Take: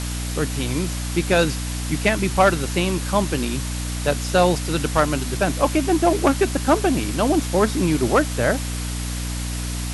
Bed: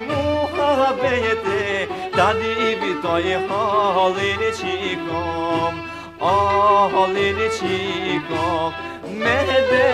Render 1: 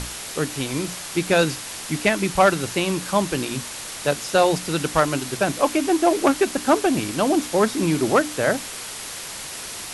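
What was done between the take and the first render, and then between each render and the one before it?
hum notches 60/120/180/240/300 Hz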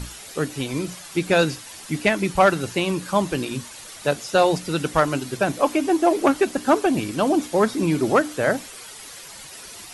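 noise reduction 10 dB, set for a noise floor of -34 dBFS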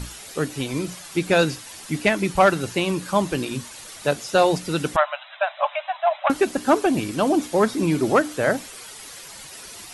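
4.96–6.30 s: brick-wall FIR band-pass 560–4000 Hz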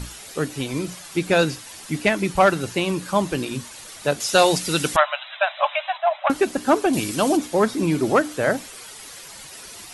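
4.20–5.98 s: treble shelf 2.1 kHz +10 dB; 6.93–7.37 s: treble shelf 3.4 kHz +9.5 dB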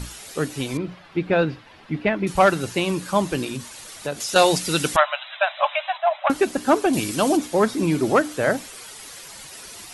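0.77–2.27 s: distance through air 370 m; 3.49–4.36 s: compression 2.5:1, threshold -25 dBFS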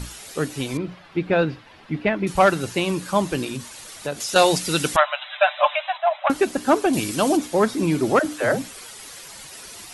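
5.21–5.75 s: comb 6.7 ms, depth 84%; 8.19–8.97 s: phase dispersion lows, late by 70 ms, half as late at 360 Hz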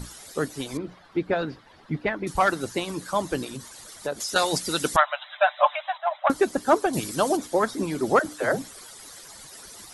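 harmonic-percussive split harmonic -11 dB; peaking EQ 2.6 kHz -8 dB 0.52 oct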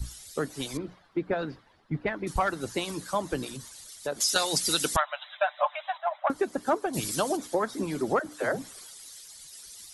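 compression 4:1, threshold -25 dBFS, peak gain reduction 10.5 dB; three bands expanded up and down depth 70%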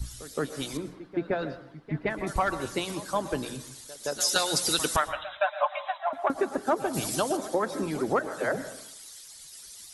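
reverse echo 169 ms -15.5 dB; plate-style reverb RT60 0.63 s, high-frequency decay 0.45×, pre-delay 100 ms, DRR 12 dB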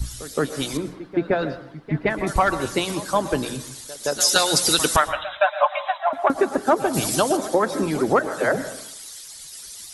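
trim +7.5 dB; peak limiter -3 dBFS, peak gain reduction 1 dB

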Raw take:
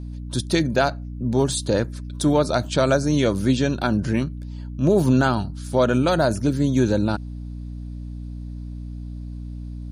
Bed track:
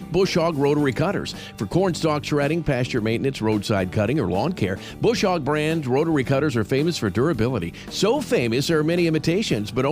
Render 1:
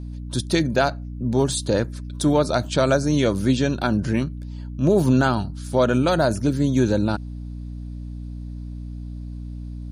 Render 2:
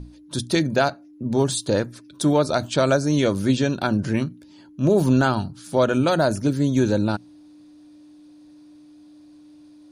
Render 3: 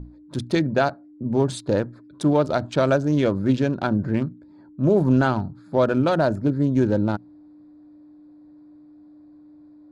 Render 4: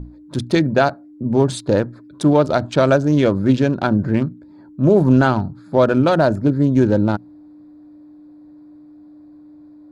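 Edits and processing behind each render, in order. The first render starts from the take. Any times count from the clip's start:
no audible change
hum notches 60/120/180/240 Hz
local Wiener filter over 15 samples; low-pass 2.9 kHz 6 dB/octave
trim +5 dB

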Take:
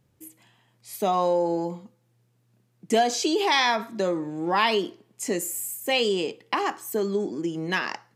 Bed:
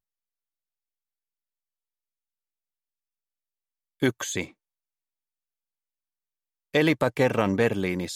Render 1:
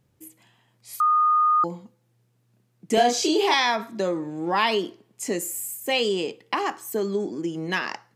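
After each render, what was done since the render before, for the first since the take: 1.00–1.64 s: bleep 1.23 kHz -16 dBFS; 2.94–3.54 s: doubling 33 ms -2 dB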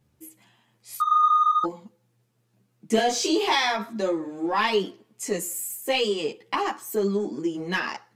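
in parallel at -7.5 dB: saturation -22 dBFS, distortion -10 dB; on the sum: three-phase chorus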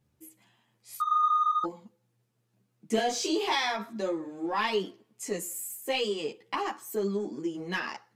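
trim -5.5 dB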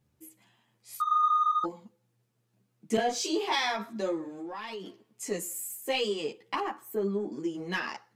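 2.97–3.59 s: three bands expanded up and down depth 100%; 4.28–4.86 s: compression, threshold -36 dBFS; 6.60–7.32 s: peaking EQ 5.7 kHz -13.5 dB 1.6 oct

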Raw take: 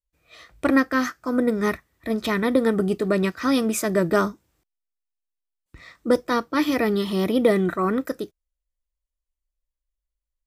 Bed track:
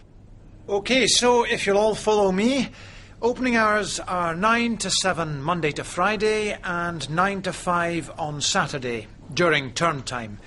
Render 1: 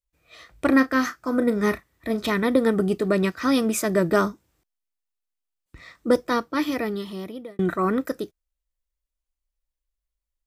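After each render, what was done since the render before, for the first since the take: 0.68–2.32 s: doubling 34 ms -12 dB; 6.24–7.59 s: fade out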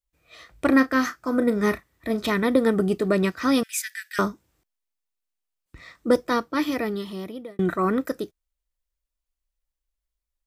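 3.63–4.19 s: steep high-pass 1.6 kHz 72 dB/octave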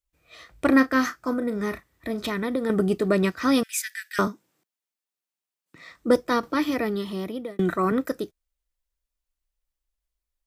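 1.33–2.70 s: compression 2:1, threshold -27 dBFS; 4.27–5.92 s: high-pass 150 Hz 24 dB/octave; 6.43–7.92 s: three bands compressed up and down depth 40%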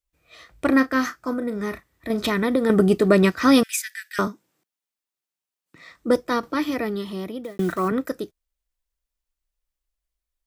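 2.10–3.76 s: gain +5.5 dB; 7.44–7.89 s: block-companded coder 5-bit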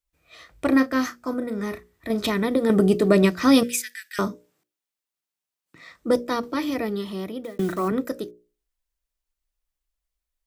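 hum notches 60/120/180/240/300/360/420/480/540/600 Hz; dynamic bell 1.5 kHz, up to -5 dB, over -39 dBFS, Q 1.6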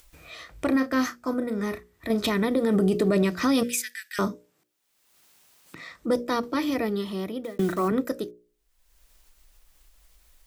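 peak limiter -14.5 dBFS, peak gain reduction 9 dB; upward compressor, threshold -36 dBFS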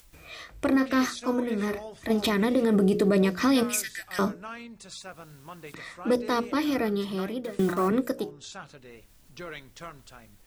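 add bed track -20.5 dB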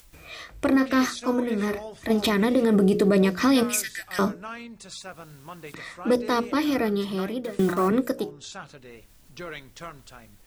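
trim +2.5 dB

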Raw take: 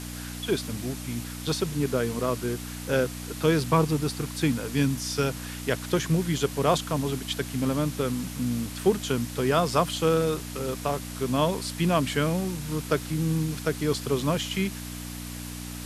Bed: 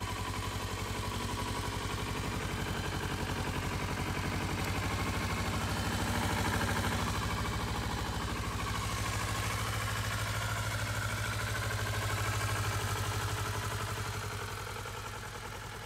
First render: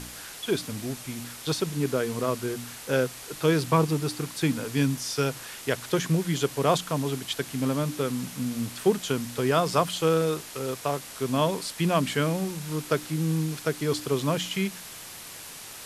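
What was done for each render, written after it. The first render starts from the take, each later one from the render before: de-hum 60 Hz, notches 5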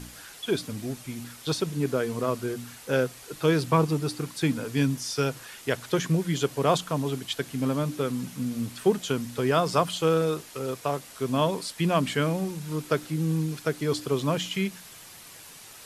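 noise reduction 6 dB, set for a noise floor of -42 dBFS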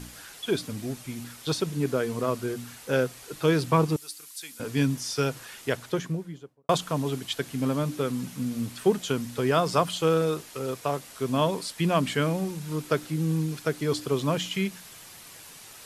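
3.96–4.60 s: differentiator; 5.58–6.69 s: studio fade out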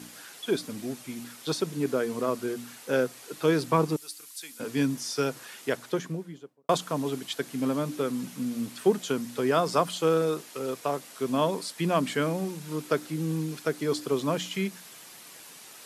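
dynamic bell 2.9 kHz, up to -3 dB, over -44 dBFS, Q 2.2; Chebyshev high-pass 220 Hz, order 2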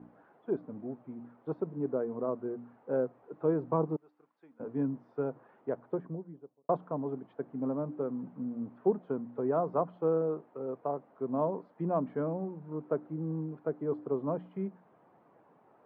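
four-pole ladder low-pass 1.1 kHz, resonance 25%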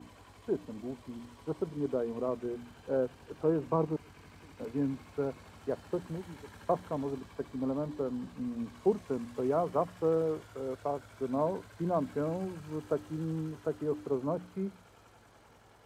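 add bed -20 dB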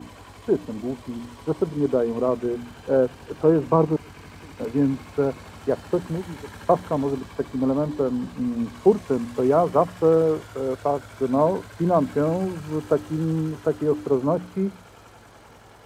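trim +11 dB

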